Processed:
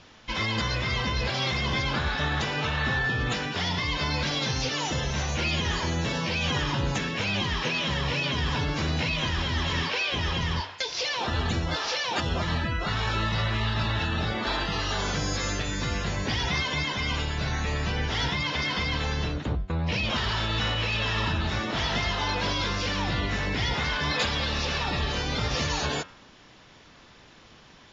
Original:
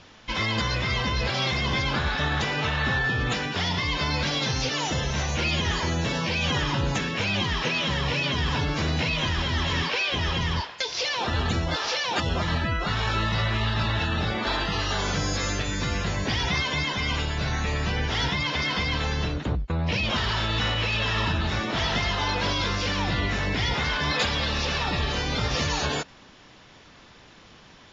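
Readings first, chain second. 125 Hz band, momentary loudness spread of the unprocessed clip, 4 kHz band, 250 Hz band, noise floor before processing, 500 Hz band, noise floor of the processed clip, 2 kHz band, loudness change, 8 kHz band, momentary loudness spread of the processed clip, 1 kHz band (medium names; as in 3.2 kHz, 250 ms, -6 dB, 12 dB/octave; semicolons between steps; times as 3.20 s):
-1.5 dB, 3 LU, -1.5 dB, -1.5 dB, -51 dBFS, -2.0 dB, -52 dBFS, -2.0 dB, -1.5 dB, no reading, 3 LU, -2.0 dB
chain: de-hum 94 Hz, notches 39; trim -1.5 dB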